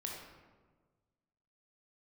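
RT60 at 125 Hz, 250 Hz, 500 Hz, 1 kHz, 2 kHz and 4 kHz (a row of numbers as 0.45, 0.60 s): 1.9, 1.6, 1.6, 1.3, 1.0, 0.75 s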